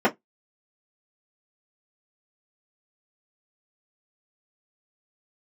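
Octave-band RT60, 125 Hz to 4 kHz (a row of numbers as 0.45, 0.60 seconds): 0.20, 0.15, 0.15, 0.15, 0.10, 0.10 seconds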